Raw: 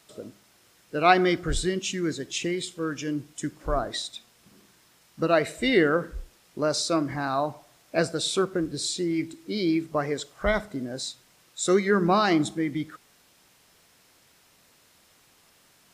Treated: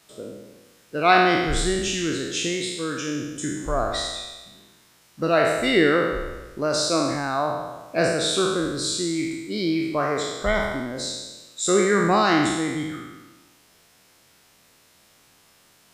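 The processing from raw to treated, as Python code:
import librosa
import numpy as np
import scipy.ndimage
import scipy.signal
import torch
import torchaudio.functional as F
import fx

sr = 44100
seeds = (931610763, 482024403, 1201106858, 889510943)

y = fx.spec_trails(x, sr, decay_s=1.21)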